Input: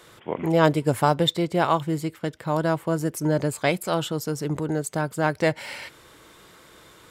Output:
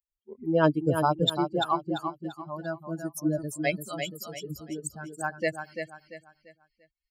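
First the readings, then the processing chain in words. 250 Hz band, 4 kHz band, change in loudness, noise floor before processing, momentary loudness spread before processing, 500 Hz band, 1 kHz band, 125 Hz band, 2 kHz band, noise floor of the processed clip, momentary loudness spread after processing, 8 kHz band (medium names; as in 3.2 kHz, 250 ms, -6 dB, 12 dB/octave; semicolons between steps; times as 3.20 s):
-4.5 dB, -3.0 dB, -5.0 dB, -52 dBFS, 10 LU, -5.5 dB, -4.5 dB, -7.5 dB, -5.0 dB, under -85 dBFS, 15 LU, -4.5 dB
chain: expander on every frequency bin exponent 3; dynamic bell 310 Hz, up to +3 dB, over -41 dBFS, Q 7.9; on a send: feedback delay 342 ms, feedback 34%, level -7 dB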